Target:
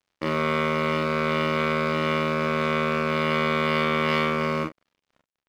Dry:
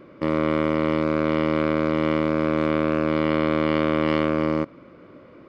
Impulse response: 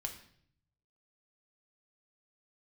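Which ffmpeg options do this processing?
-filter_complex "[0:a]tiltshelf=f=1300:g=-5,aeval=exprs='sgn(val(0))*max(abs(val(0))-0.00794,0)':c=same,asplit=2[s0][s1];[s1]aecho=0:1:31|43|75:0.631|0.631|0.2[s2];[s0][s2]amix=inputs=2:normalize=0"

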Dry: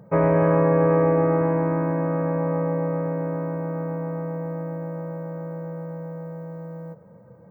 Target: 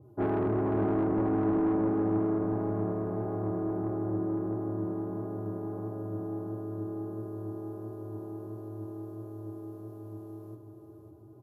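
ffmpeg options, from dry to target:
-af "highpass=140,bass=f=250:g=-4,treble=f=4000:g=0,bandreject=f=810:w=12,asetrate=28974,aresample=44100,flanger=delay=7.4:depth=4.9:regen=66:speed=1.5:shape=sinusoidal,asoftclip=type=tanh:threshold=0.0631,aecho=1:1:543|1086|1629|2172|2715:0.398|0.187|0.0879|0.0413|0.0194,adynamicequalizer=threshold=0.00562:dfrequency=1600:dqfactor=0.7:tfrequency=1600:tqfactor=0.7:attack=5:release=100:ratio=0.375:range=2.5:mode=cutabove:tftype=highshelf"

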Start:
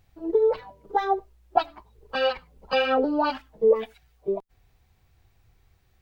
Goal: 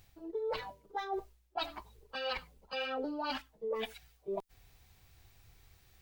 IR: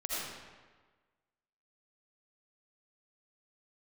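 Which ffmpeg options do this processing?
-af "highshelf=f=2300:g=9.5,areverse,acompressor=threshold=0.02:ratio=8,areverse,volume=0.891"

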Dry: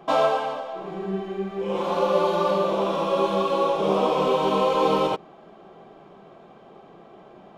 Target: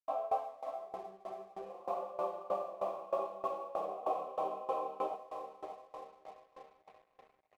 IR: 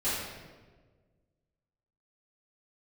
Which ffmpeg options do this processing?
-filter_complex "[0:a]agate=range=0.282:threshold=0.0126:ratio=16:detection=peak,asplit=3[s0][s1][s2];[s0]bandpass=f=730:t=q:w=8,volume=1[s3];[s1]bandpass=f=1090:t=q:w=8,volume=0.501[s4];[s2]bandpass=f=2440:t=q:w=8,volume=0.355[s5];[s3][s4][s5]amix=inputs=3:normalize=0,equalizer=f=2900:t=o:w=2.4:g=-12,asplit=2[s6][s7];[s7]aecho=0:1:583|1166|1749|2332|2915|3498:0.355|0.192|0.103|0.0559|0.0302|0.0163[s8];[s6][s8]amix=inputs=2:normalize=0,aeval=exprs='sgn(val(0))*max(abs(val(0))-0.00106,0)':c=same,aeval=exprs='val(0)*pow(10,-20*if(lt(mod(3.2*n/s,1),2*abs(3.2)/1000),1-mod(3.2*n/s,1)/(2*abs(3.2)/1000),(mod(3.2*n/s,1)-2*abs(3.2)/1000)/(1-2*abs(3.2)/1000))/20)':c=same,volume=1.5"

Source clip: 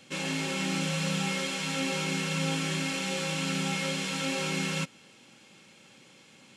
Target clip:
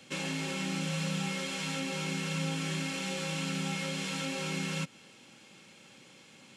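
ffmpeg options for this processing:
-filter_complex "[0:a]acrossover=split=160[s0][s1];[s1]acompressor=threshold=0.0224:ratio=6[s2];[s0][s2]amix=inputs=2:normalize=0"

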